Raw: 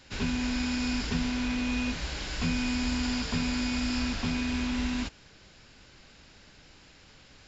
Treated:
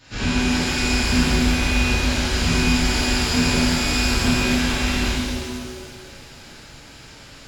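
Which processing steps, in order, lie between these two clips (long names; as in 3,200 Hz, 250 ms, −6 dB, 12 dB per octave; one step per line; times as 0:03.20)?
reverb with rising layers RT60 2 s, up +7 semitones, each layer −8 dB, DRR −11.5 dB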